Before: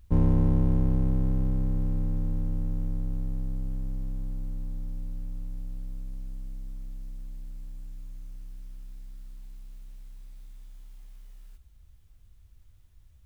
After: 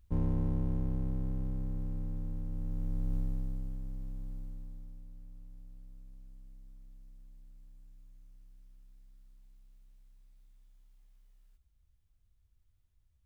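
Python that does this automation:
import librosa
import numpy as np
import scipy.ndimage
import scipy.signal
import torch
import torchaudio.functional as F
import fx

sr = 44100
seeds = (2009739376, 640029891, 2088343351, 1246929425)

y = fx.gain(x, sr, db=fx.line((2.47, -9.0), (3.16, -1.5), (3.79, -8.0), (4.36, -8.0), (5.04, -15.0)))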